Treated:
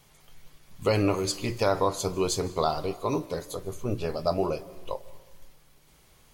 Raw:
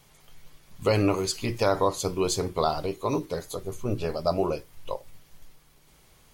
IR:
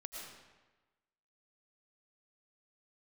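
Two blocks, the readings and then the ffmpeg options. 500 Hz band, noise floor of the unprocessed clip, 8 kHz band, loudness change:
−1.0 dB, −58 dBFS, −1.0 dB, −1.0 dB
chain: -filter_complex "[0:a]asplit=2[link_01][link_02];[1:a]atrim=start_sample=2205,asetrate=40131,aresample=44100,adelay=32[link_03];[link_02][link_03]afir=irnorm=-1:irlink=0,volume=-14dB[link_04];[link_01][link_04]amix=inputs=2:normalize=0,volume=-1dB"

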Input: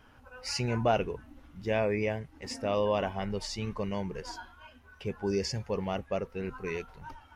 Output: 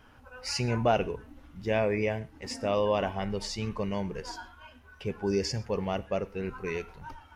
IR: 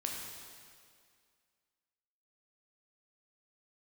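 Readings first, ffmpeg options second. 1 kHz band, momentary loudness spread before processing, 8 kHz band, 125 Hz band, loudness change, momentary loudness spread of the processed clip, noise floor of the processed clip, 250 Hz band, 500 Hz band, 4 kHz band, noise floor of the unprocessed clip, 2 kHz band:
+1.5 dB, 15 LU, +1.5 dB, +1.5 dB, +1.5 dB, 15 LU, −55 dBFS, +1.5 dB, +1.5 dB, +1.5 dB, −57 dBFS, +1.5 dB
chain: -filter_complex "[0:a]asplit=2[link_01][link_02];[1:a]atrim=start_sample=2205,atrim=end_sample=6174[link_03];[link_02][link_03]afir=irnorm=-1:irlink=0,volume=-13dB[link_04];[link_01][link_04]amix=inputs=2:normalize=0"

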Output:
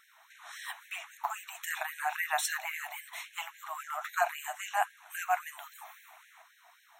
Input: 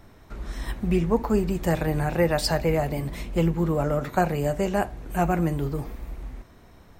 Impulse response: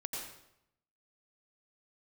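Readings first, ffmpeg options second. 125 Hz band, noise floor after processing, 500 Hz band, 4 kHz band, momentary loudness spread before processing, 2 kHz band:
below −40 dB, −63 dBFS, −18.5 dB, −6.0 dB, 15 LU, 0.0 dB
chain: -af "asuperstop=centerf=4800:order=8:qfactor=3.7,afftfilt=real='re*gte(b*sr/1024,610*pow(1600/610,0.5+0.5*sin(2*PI*3.7*pts/sr)))':imag='im*gte(b*sr/1024,610*pow(1600/610,0.5+0.5*sin(2*PI*3.7*pts/sr)))':win_size=1024:overlap=0.75"

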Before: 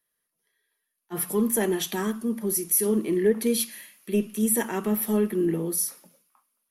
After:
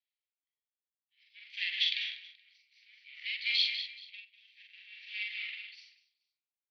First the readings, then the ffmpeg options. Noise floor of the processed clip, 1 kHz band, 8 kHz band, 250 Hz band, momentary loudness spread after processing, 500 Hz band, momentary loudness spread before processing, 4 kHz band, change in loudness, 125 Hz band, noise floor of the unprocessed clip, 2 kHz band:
below −85 dBFS, below −35 dB, below −35 dB, below −40 dB, 21 LU, below −40 dB, 7 LU, +6.5 dB, −7.5 dB, below −40 dB, −80 dBFS, +1.5 dB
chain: -filter_complex "[0:a]highshelf=frequency=2800:gain=-10.5,dynaudnorm=framelen=300:gausssize=9:maxgain=11.5dB,aeval=exprs='0.75*(cos(1*acos(clip(val(0)/0.75,-1,1)))-cos(1*PI/2))+0.0473*(cos(8*acos(clip(val(0)/0.75,-1,1)))-cos(8*PI/2))':channel_layout=same,asoftclip=type=tanh:threshold=-9dB,aeval=exprs='0.596*(cos(1*acos(clip(val(0)/0.596,-1,1)))-cos(1*PI/2))+0.0473*(cos(7*acos(clip(val(0)/0.596,-1,1)))-cos(7*PI/2))':channel_layout=same,asuperpass=centerf=3200:order=12:qfactor=1.2,asplit=2[link_01][link_02];[link_02]adelay=44,volume=-2.5dB[link_03];[link_01][link_03]amix=inputs=2:normalize=0,aecho=1:1:51|196|428:0.251|0.398|0.224,aeval=exprs='val(0)*pow(10,-25*(0.5-0.5*cos(2*PI*0.55*n/s))/20)':channel_layout=same,volume=6dB"

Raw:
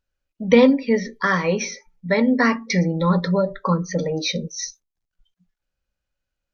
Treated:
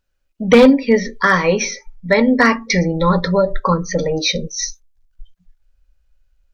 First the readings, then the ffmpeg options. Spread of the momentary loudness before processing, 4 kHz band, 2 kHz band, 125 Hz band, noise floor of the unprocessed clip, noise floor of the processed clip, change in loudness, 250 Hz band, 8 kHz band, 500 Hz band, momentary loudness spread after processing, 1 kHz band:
15 LU, +6.5 dB, +6.5 dB, +2.0 dB, −83 dBFS, −66 dBFS, +4.5 dB, +3.5 dB, can't be measured, +5.0 dB, 13 LU, +6.5 dB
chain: -af "asubboost=boost=12:cutoff=55,volume=9.5dB,asoftclip=hard,volume=-9.5dB,volume=6.5dB"

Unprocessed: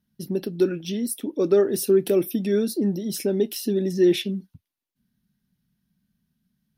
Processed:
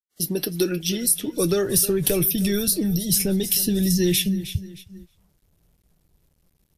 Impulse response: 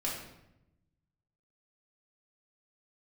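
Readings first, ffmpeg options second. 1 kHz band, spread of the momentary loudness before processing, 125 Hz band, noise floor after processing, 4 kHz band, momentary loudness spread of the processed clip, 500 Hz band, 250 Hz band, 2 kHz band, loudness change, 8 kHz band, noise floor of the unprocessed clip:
+1.5 dB, 9 LU, +6.5 dB, −68 dBFS, +8.0 dB, 7 LU, −4.0 dB, +1.0 dB, +4.5 dB, +2.0 dB, +12.5 dB, −82 dBFS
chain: -filter_complex "[0:a]aecho=1:1:311|622|933:0.126|0.0441|0.0154,acrossover=split=110|3300[link_01][link_02][link_03];[link_01]dynaudnorm=framelen=260:gausssize=9:maxgain=16dB[link_04];[link_04][link_02][link_03]amix=inputs=3:normalize=0,agate=range=-15dB:threshold=-49dB:ratio=16:detection=peak,crystalizer=i=5:c=0,flanger=delay=5.4:depth=1.2:regen=56:speed=1.2:shape=triangular,asubboost=boost=10:cutoff=110,acrossover=split=2600|6000[link_05][link_06][link_07];[link_05]acompressor=threshold=-24dB:ratio=4[link_08];[link_06]acompressor=threshold=-37dB:ratio=4[link_09];[link_07]acompressor=threshold=-26dB:ratio=4[link_10];[link_08][link_09][link_10]amix=inputs=3:normalize=0,adynamicequalizer=threshold=0.00794:dfrequency=220:dqfactor=3.4:tfrequency=220:tqfactor=3.4:attack=5:release=100:ratio=0.375:range=2.5:mode=cutabove:tftype=bell,acrusher=bits=11:mix=0:aa=0.000001,volume=6.5dB" -ar 32000 -c:a wmav2 -b:a 128k

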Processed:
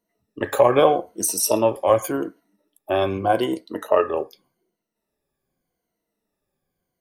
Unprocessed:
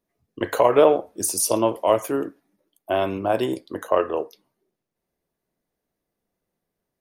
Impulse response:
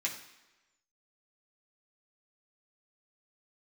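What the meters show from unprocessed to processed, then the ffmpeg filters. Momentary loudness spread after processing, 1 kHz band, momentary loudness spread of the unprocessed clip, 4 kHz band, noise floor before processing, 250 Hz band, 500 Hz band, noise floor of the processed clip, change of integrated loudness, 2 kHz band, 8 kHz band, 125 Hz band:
12 LU, +2.0 dB, 13 LU, +2.0 dB, −83 dBFS, +0.5 dB, +1.0 dB, −81 dBFS, +1.0 dB, +2.0 dB, +1.0 dB, +3.0 dB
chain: -af "afftfilt=real='re*pow(10,13/40*sin(2*PI*(1.9*log(max(b,1)*sr/1024/100)/log(2)-(-0.84)*(pts-256)/sr)))':imag='im*pow(10,13/40*sin(2*PI*(1.9*log(max(b,1)*sr/1024/100)/log(2)-(-0.84)*(pts-256)/sr)))':win_size=1024:overlap=0.75"

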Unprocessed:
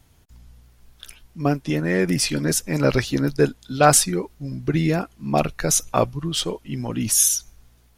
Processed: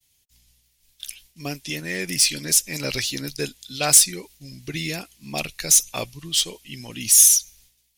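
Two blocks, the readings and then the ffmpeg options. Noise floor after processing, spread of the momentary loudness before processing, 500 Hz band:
−66 dBFS, 10 LU, −11.0 dB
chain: -af "aexciter=amount=3.5:drive=9.6:freq=2000,agate=range=-33dB:threshold=-37dB:ratio=3:detection=peak,volume=-11dB"

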